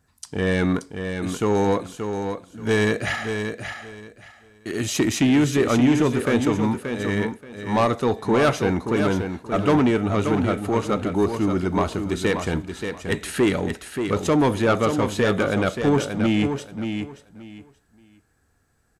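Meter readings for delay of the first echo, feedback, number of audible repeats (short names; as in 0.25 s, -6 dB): 0.579 s, 21%, 3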